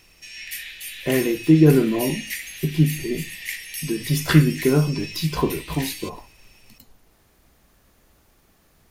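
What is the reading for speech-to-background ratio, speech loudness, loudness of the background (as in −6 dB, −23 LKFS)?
11.0 dB, −21.0 LKFS, −32.0 LKFS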